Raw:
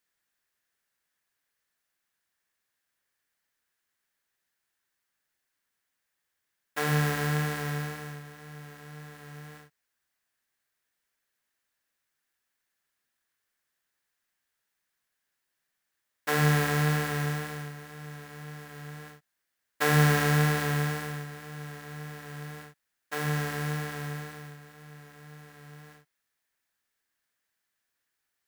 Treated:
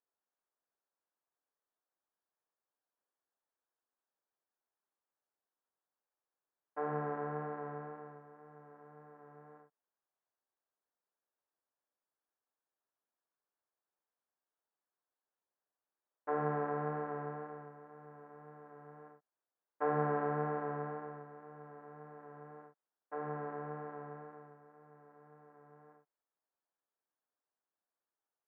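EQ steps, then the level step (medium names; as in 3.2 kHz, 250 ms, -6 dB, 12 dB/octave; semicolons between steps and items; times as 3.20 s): high-pass 350 Hz 12 dB/octave; low-pass 1.1 kHz 24 dB/octave; -3.0 dB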